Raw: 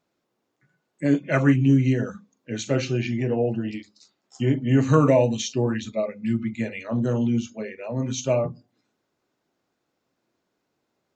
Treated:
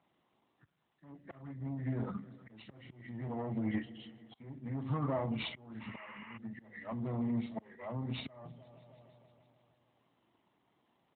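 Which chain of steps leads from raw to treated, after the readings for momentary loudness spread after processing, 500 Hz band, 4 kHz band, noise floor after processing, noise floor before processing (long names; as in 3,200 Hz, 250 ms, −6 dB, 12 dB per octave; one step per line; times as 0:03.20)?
19 LU, −20.0 dB, −12.0 dB, −77 dBFS, −77 dBFS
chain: hearing-aid frequency compression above 1,300 Hz 1.5 to 1
downward compressor 20 to 1, threshold −30 dBFS, peak gain reduction 19 dB
on a send: echo machine with several playback heads 157 ms, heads first and second, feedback 56%, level −23 dB
on the sum: tube saturation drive 31 dB, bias 0.55
volume swells 777 ms
parametric band 720 Hz +4 dB 1.6 octaves
sound drawn into the spectrogram noise, 0:05.80–0:06.38, 810–2,900 Hz −54 dBFS
comb filter 1 ms, depth 52%
level +3 dB
AMR narrowband 12.2 kbit/s 8,000 Hz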